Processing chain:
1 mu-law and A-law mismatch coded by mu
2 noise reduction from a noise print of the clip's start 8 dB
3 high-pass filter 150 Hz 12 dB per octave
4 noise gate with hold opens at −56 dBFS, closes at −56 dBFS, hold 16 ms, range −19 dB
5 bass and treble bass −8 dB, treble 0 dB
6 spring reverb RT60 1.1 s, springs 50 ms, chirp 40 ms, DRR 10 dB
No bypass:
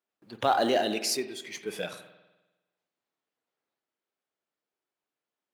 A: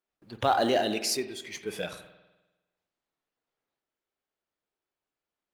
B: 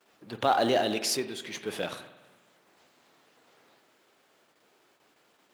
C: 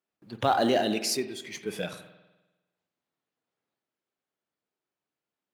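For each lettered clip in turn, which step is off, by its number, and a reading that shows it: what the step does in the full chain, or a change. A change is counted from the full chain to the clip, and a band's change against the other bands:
3, 125 Hz band +4.5 dB
2, 125 Hz band +3.0 dB
5, 125 Hz band +7.0 dB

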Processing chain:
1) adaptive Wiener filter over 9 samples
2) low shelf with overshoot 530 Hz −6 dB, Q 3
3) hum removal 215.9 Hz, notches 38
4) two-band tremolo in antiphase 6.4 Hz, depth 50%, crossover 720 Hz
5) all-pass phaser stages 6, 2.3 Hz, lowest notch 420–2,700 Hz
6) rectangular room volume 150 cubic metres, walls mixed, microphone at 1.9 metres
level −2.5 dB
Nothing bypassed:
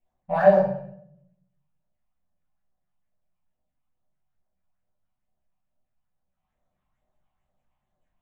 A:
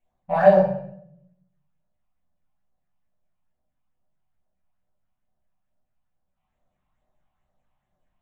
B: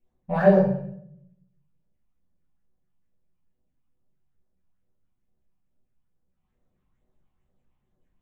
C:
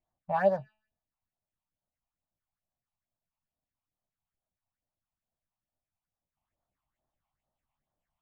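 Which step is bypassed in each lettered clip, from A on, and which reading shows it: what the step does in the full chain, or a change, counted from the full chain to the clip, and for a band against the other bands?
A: 4, change in integrated loudness +2.0 LU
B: 2, 250 Hz band +8.0 dB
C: 6, echo-to-direct ratio 6.5 dB to none audible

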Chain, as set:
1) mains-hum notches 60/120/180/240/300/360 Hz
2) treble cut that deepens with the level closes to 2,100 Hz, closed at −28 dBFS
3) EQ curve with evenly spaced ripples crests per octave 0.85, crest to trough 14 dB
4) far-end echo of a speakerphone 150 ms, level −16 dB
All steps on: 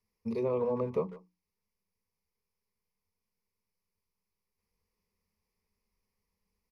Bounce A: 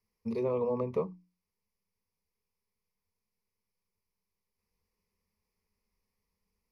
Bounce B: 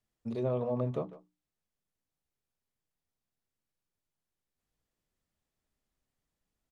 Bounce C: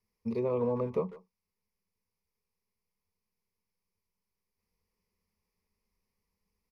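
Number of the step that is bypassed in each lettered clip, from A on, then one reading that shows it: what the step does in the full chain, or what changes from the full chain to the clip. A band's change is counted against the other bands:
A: 4, echo-to-direct ratio −19.5 dB to none audible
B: 3, 125 Hz band +8.0 dB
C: 1, 125 Hz band +2.0 dB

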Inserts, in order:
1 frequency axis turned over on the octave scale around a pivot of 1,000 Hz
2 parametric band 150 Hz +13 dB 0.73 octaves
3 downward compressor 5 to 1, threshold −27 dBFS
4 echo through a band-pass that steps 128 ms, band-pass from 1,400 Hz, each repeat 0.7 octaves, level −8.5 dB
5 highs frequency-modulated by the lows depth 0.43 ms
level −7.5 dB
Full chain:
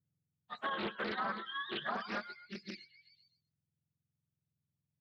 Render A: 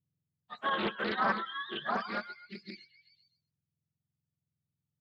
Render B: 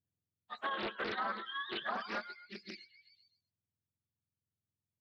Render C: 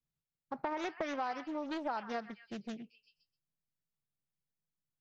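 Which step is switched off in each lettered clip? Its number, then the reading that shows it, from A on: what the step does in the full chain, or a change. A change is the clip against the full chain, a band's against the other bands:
3, average gain reduction 3.0 dB
2, 125 Hz band −5.0 dB
1, 250 Hz band +10.5 dB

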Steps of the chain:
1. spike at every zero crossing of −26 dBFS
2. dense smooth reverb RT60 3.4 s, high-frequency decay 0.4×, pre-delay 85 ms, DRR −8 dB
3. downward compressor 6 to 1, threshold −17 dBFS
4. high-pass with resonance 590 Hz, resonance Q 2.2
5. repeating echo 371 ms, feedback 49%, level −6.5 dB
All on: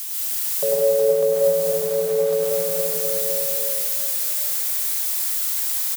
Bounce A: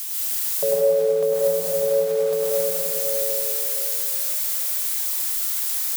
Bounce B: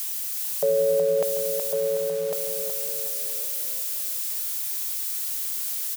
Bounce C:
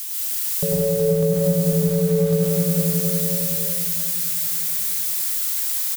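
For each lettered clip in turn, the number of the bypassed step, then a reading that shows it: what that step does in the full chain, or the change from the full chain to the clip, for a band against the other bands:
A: 5, 125 Hz band −2.5 dB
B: 2, change in momentary loudness spread +1 LU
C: 4, 125 Hz band +22.0 dB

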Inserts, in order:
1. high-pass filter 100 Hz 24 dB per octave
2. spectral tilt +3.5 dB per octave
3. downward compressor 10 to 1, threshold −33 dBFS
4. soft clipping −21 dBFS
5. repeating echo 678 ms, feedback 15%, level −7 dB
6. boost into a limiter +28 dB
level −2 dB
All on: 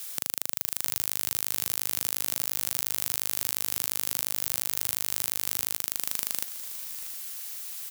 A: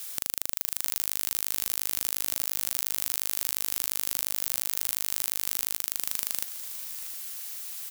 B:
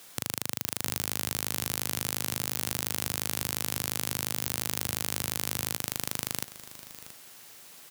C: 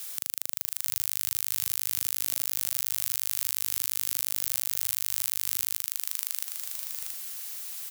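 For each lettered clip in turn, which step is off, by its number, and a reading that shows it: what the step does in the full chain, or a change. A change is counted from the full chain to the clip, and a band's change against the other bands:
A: 1, 250 Hz band −2.0 dB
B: 2, 125 Hz band +9.0 dB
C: 4, distortion level −13 dB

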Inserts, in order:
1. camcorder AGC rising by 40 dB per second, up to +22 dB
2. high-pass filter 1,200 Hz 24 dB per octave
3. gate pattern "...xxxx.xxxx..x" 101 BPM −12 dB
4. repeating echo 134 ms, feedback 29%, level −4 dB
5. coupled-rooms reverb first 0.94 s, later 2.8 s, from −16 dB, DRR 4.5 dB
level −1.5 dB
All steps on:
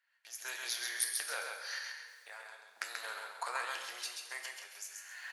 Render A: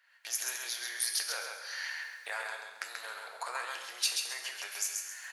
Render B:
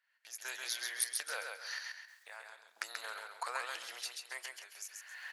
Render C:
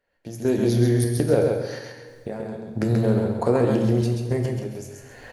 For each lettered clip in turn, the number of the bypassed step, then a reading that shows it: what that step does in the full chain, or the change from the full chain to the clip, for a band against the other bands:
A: 3, 4 kHz band +3.5 dB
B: 5, echo-to-direct ratio 0.0 dB to −3.5 dB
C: 2, 500 Hz band +30.5 dB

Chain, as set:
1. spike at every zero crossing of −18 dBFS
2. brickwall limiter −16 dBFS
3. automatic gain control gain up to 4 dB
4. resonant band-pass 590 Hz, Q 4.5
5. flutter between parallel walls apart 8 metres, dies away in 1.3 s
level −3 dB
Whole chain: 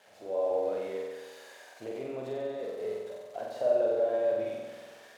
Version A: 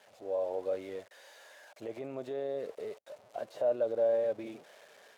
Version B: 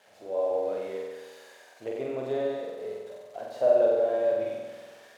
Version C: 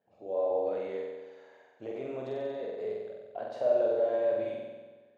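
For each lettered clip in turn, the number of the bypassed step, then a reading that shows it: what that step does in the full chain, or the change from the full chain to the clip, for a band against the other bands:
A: 5, change in momentary loudness spread +6 LU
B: 2, average gain reduction 1.5 dB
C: 1, distortion level −6 dB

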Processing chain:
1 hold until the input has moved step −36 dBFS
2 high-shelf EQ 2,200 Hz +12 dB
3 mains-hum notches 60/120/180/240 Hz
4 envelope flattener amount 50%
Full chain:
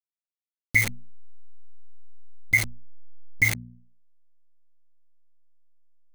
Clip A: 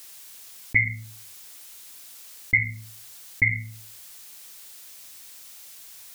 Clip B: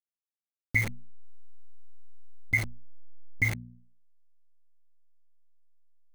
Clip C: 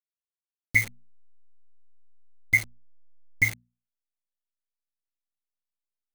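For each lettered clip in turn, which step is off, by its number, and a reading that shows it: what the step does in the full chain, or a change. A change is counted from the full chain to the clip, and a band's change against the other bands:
1, distortion level −11 dB
2, 8 kHz band −9.5 dB
4, change in crest factor +3.0 dB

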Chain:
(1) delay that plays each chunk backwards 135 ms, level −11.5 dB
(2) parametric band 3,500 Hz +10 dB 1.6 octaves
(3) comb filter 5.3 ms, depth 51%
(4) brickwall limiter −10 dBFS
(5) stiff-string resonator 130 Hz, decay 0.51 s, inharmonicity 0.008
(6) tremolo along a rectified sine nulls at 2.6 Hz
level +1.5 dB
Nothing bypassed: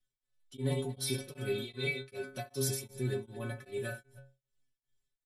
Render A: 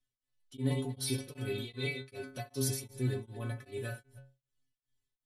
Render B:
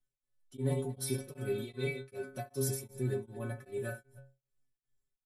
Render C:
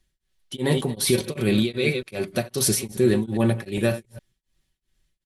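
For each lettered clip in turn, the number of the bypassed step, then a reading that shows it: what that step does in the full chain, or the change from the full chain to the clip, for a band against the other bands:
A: 3, 250 Hz band +3.0 dB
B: 2, 4 kHz band −8.0 dB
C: 5, 250 Hz band +5.5 dB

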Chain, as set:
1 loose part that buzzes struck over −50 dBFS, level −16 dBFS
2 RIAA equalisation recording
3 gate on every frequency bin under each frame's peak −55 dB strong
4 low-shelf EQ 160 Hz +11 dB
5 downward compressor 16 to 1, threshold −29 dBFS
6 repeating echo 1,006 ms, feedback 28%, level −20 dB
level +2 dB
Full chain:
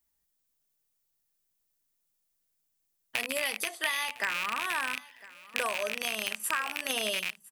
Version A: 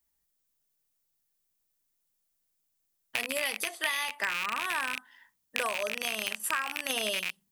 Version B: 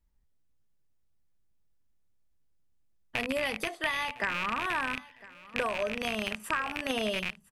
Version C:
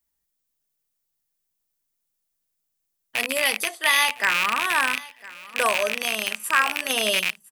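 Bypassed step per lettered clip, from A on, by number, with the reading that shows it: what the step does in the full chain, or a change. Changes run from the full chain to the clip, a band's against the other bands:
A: 6, change in momentary loudness spread −1 LU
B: 2, 8 kHz band −12.0 dB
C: 5, average gain reduction 8.0 dB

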